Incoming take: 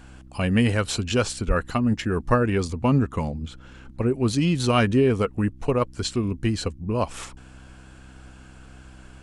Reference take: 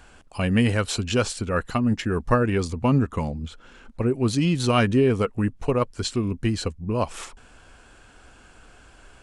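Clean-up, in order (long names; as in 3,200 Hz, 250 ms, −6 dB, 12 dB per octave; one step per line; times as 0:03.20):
hum removal 64.4 Hz, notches 5
high-pass at the plosives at 0:01.47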